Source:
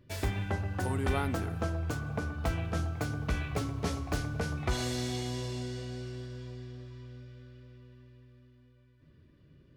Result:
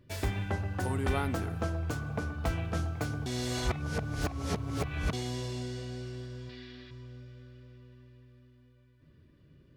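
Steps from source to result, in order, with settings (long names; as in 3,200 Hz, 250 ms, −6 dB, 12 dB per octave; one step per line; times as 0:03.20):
0:03.26–0:05.13: reverse
0:06.49–0:06.91: octave-band graphic EQ 125/250/500/2,000/4,000/8,000 Hz −11/+5/−5/+9/+11/−9 dB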